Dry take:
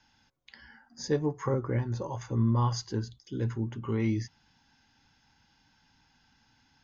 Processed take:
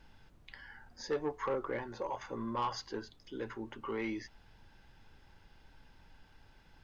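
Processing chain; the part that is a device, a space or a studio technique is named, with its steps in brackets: aircraft cabin announcement (BPF 470–3500 Hz; soft clip -29 dBFS, distortion -14 dB; brown noise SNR 17 dB); gain +2 dB

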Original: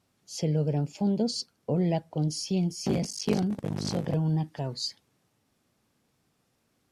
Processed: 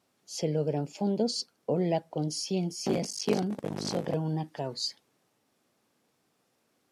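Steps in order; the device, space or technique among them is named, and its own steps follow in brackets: filter by subtraction (in parallel: LPF 440 Hz 12 dB/oct + phase invert)

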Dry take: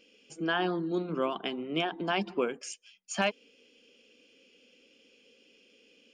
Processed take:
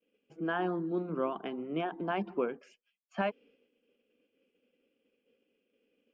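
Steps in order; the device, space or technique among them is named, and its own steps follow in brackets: hearing-loss simulation (LPF 1600 Hz 12 dB/oct; expander -58 dBFS); gain -2 dB

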